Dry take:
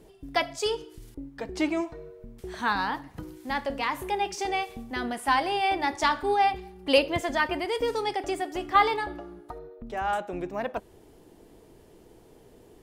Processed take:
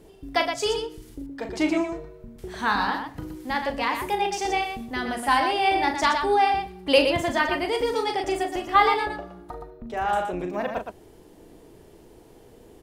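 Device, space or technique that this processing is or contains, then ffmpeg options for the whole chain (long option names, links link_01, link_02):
slapback doubling: -filter_complex "[0:a]asplit=3[link_01][link_02][link_03];[link_02]adelay=39,volume=-7dB[link_04];[link_03]adelay=119,volume=-6.5dB[link_05];[link_01][link_04][link_05]amix=inputs=3:normalize=0,volume=2dB"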